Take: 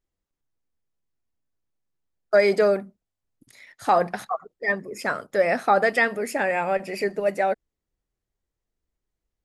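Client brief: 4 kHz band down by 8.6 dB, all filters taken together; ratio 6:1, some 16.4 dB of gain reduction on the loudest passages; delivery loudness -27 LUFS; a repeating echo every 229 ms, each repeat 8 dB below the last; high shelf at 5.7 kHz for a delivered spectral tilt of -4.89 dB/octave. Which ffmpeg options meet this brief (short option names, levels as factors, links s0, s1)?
-af "equalizer=f=4000:t=o:g=-8.5,highshelf=f=5700:g=-6.5,acompressor=threshold=0.0224:ratio=6,aecho=1:1:229|458|687|916|1145:0.398|0.159|0.0637|0.0255|0.0102,volume=2.99"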